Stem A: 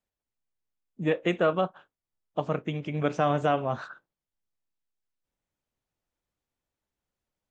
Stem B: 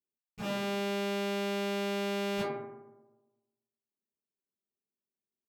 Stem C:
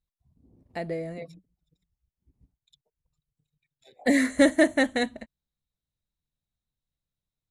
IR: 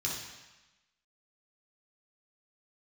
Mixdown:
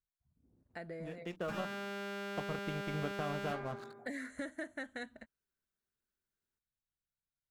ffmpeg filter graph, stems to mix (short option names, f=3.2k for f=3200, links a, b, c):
-filter_complex "[0:a]aeval=exprs='sgn(val(0))*max(abs(val(0))-0.0112,0)':c=same,acompressor=threshold=-34dB:ratio=3,bass=f=250:g=4,treble=f=4k:g=3,volume=-5dB[a];[1:a]adelay=1100,volume=-1dB[b];[2:a]volume=-12dB,asplit=2[c][d];[d]apad=whole_len=330841[e];[a][e]sidechaincompress=threshold=-51dB:ratio=8:attack=16:release=352[f];[b][c]amix=inputs=2:normalize=0,equalizer=f=1.5k:t=o:w=0.45:g=12.5,acompressor=threshold=-41dB:ratio=4,volume=0dB[g];[f][g]amix=inputs=2:normalize=0"